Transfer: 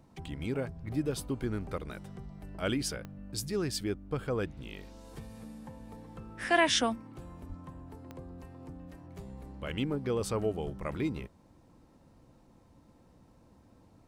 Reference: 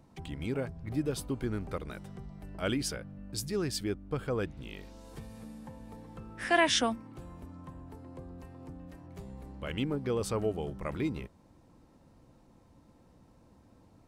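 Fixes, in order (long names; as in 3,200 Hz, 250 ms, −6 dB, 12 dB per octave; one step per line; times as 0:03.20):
click removal
0:07.48–0:07.60: high-pass filter 140 Hz 24 dB per octave
0:10.64–0:10.76: high-pass filter 140 Hz 24 dB per octave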